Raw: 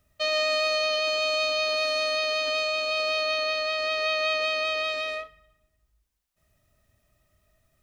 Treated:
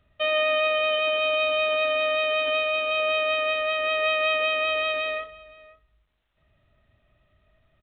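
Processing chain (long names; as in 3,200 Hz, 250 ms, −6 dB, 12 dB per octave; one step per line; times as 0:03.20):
slap from a distant wall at 89 metres, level −20 dB
level +3 dB
mu-law 64 kbit/s 8,000 Hz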